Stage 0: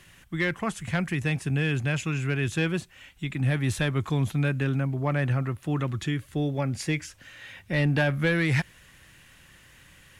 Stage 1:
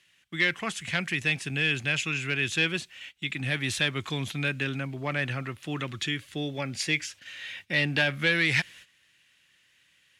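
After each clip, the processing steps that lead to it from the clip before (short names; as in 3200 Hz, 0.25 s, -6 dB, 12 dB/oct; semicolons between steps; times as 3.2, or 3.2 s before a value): gate -49 dBFS, range -14 dB; weighting filter D; gain -3.5 dB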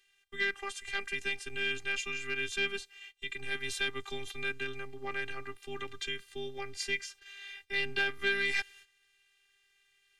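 frequency shift -45 Hz; robotiser 396 Hz; gain -4 dB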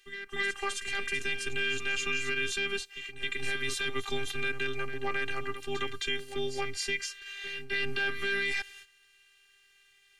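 limiter -24.5 dBFS, peak gain reduction 10 dB; reverse echo 0.265 s -10 dB; gain +6.5 dB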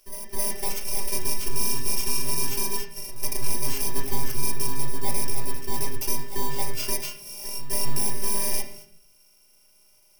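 FFT order left unsorted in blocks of 32 samples; reverb RT60 0.55 s, pre-delay 6 ms, DRR 0.5 dB; gain +3.5 dB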